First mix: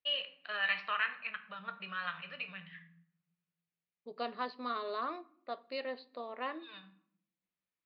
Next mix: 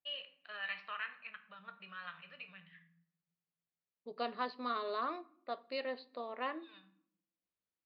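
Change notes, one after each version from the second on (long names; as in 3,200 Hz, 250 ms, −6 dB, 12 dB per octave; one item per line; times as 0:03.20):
first voice −8.5 dB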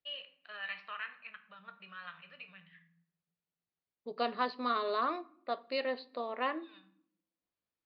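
second voice +5.0 dB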